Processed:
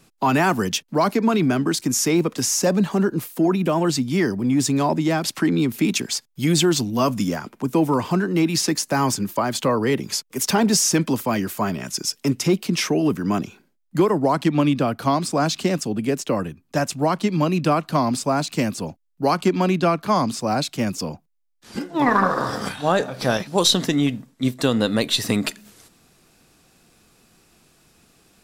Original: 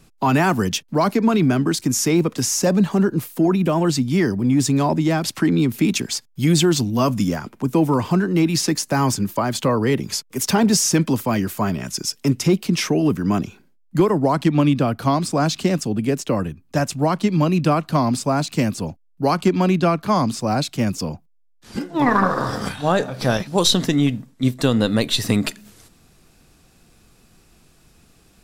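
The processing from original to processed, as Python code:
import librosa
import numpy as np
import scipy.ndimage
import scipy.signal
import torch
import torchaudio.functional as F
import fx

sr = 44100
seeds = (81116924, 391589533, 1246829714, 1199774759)

y = fx.low_shelf(x, sr, hz=110.0, db=-12.0)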